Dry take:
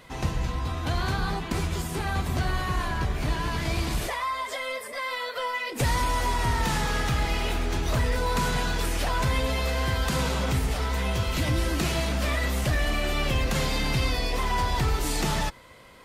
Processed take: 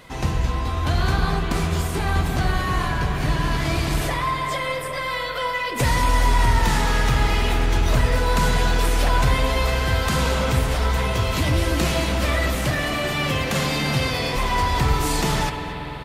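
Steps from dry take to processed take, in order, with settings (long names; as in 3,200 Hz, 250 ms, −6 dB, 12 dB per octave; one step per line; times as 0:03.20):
0:12.55–0:14.36: high-pass filter 98 Hz
single-tap delay 233 ms −18.5 dB
on a send at −4 dB: convolution reverb RT60 5.0 s, pre-delay 47 ms
on the sum: level +4 dB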